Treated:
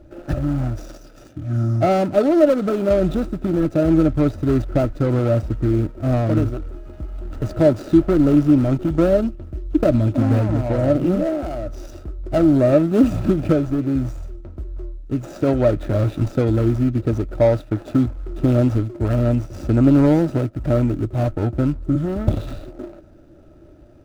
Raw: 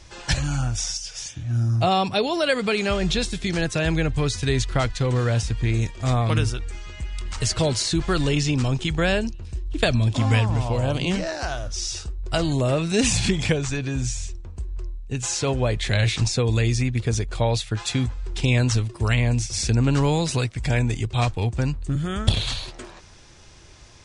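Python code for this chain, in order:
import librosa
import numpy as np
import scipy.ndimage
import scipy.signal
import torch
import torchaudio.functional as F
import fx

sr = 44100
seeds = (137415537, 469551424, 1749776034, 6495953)

y = scipy.ndimage.median_filter(x, 41, mode='constant')
y = fx.small_body(y, sr, hz=(310.0, 590.0, 1300.0), ring_ms=35, db=15)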